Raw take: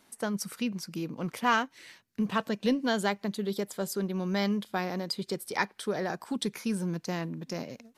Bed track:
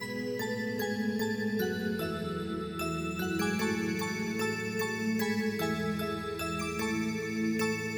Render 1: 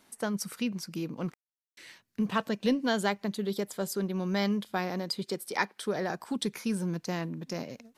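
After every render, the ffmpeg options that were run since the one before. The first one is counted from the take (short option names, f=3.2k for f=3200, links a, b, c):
-filter_complex "[0:a]asettb=1/sr,asplit=3[a][b][c];[a]atrim=end=5.244[d];[b]atrim=start=5.24:end=5.83,asetpts=PTS-STARTPTS,afade=t=in:d=0.004:c=qsin,afade=t=out:st=0.586:d=0.004:c=qsin,highpass=170[e];[c]atrim=start=5.826[f];[d][e]acrossfade=d=0.004:c1=hsin:c2=qsin[g];[g][f]acrossfade=d=0.004:c1=qsin:c2=hsin,asplit=3[h][i][j];[h]atrim=end=1.34,asetpts=PTS-STARTPTS,afade=t=out:st=1.336:d=0.004:c=hsin[k];[i]atrim=start=1.34:end=1.77,asetpts=PTS-STARTPTS,volume=0[l];[j]atrim=start=1.77,asetpts=PTS-STARTPTS,afade=t=in:d=0.004:c=hsin[m];[k][l][m]concat=n=3:v=0:a=1"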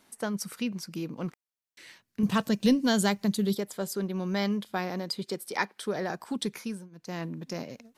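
-filter_complex "[0:a]asettb=1/sr,asplit=3[a][b][c];[a]atrim=end=2.234[d];[b]atrim=start=2.23:end=3.55,asetpts=PTS-STARTPTS,afade=t=in:d=0.004:c=qsin,afade=t=out:st=1.316:d=0.004:c=qsin,bass=f=250:g=10,treble=f=4k:g=10[e];[c]atrim=start=3.546[f];[d][e]acrossfade=d=0.004:c1=hsin:c2=qsin[g];[g][f]acrossfade=d=0.004:c1=qsin:c2=hsin,asplit=3[h][i][j];[h]atrim=end=6.89,asetpts=PTS-STARTPTS,afade=t=out:st=6.55:d=0.34:silence=0.0630957[k];[i]atrim=start=6.89:end=6.91,asetpts=PTS-STARTPTS,volume=-24dB[l];[j]atrim=start=6.91,asetpts=PTS-STARTPTS,afade=t=in:d=0.34:silence=0.0630957[m];[k][l][m]concat=n=3:v=0:a=1"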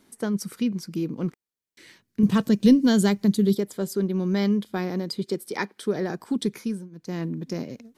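-af "lowshelf=f=500:t=q:w=1.5:g=6,bandreject=f=2.7k:w=19"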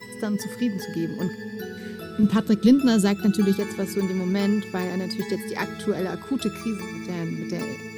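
-filter_complex "[1:a]volume=-3dB[a];[0:a][a]amix=inputs=2:normalize=0"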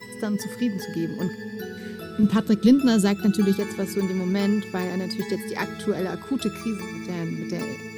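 -af anull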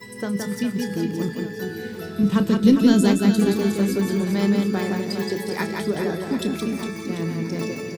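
-filter_complex "[0:a]asplit=2[a][b];[b]adelay=30,volume=-12dB[c];[a][c]amix=inputs=2:normalize=0,aecho=1:1:170|408|741.2|1208|1861:0.631|0.398|0.251|0.158|0.1"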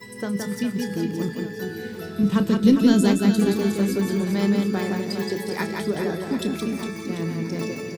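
-af "volume=-1dB"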